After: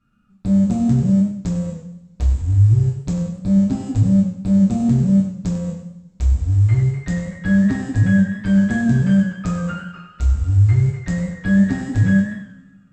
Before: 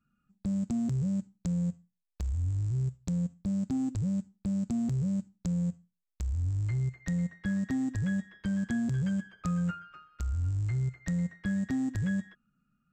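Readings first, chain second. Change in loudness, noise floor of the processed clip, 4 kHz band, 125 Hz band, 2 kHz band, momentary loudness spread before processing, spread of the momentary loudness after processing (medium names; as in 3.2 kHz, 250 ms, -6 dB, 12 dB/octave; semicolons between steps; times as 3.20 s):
+14.0 dB, -50 dBFS, no reading, +14.5 dB, +15.0 dB, 5 LU, 10 LU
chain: distance through air 55 m; two-slope reverb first 0.49 s, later 2.3 s, from -25 dB, DRR -5 dB; modulated delay 97 ms, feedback 35%, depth 100 cents, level -10.5 dB; trim +7.5 dB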